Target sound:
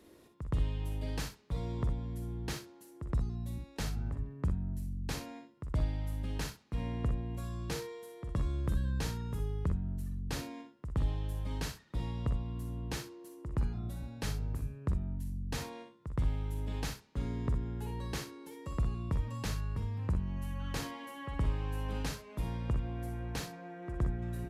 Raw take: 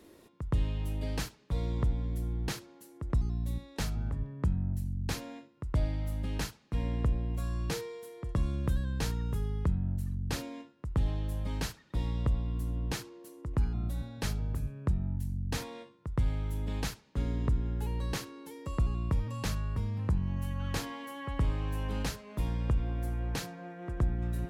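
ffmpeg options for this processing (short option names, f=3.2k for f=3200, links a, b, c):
-filter_complex "[0:a]asplit=2[a][b];[b]aecho=0:1:46|60:0.299|0.355[c];[a][c]amix=inputs=2:normalize=0,aresample=32000,aresample=44100,volume=-3.5dB"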